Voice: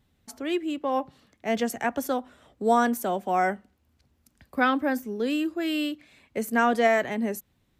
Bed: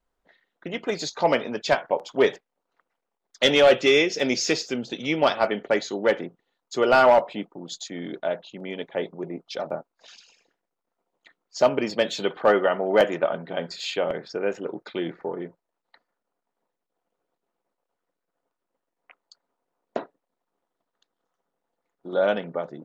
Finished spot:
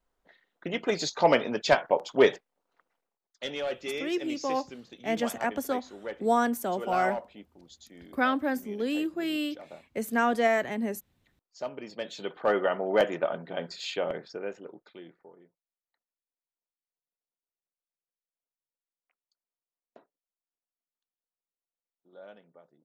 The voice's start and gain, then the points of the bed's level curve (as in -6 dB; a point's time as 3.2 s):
3.60 s, -3.0 dB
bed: 3.01 s -0.5 dB
3.35 s -16.5 dB
11.76 s -16.5 dB
12.63 s -5 dB
14.15 s -5 dB
15.55 s -26.5 dB